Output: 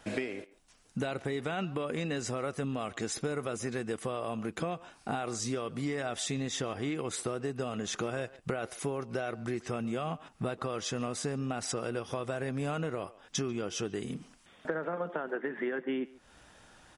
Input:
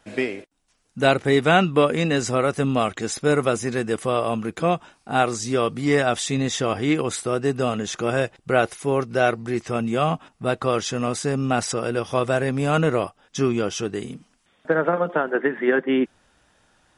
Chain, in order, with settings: limiter -12 dBFS, peak gain reduction 8.5 dB; compressor 8:1, threshold -35 dBFS, peak gain reduction 18 dB; speakerphone echo 0.14 s, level -19 dB; gain +3.5 dB

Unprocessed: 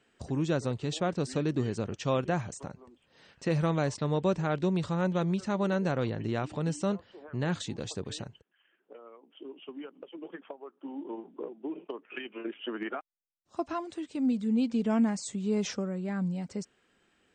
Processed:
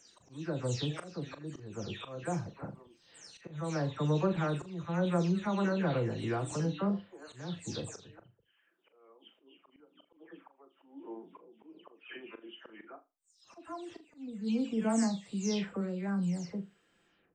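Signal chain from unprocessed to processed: spectral delay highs early, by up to 0.274 s; auto swell 0.43 s; flutter echo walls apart 6.9 m, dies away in 0.23 s; gain -1 dB

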